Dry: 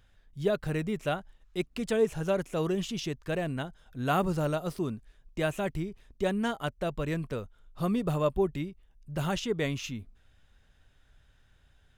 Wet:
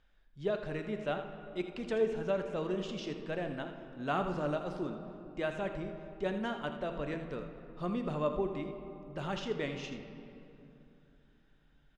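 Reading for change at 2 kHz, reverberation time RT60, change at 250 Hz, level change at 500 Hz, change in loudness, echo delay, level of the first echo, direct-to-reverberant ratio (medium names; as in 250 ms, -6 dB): -4.5 dB, 3.0 s, -6.0 dB, -4.0 dB, -5.5 dB, 81 ms, -11.0 dB, 5.5 dB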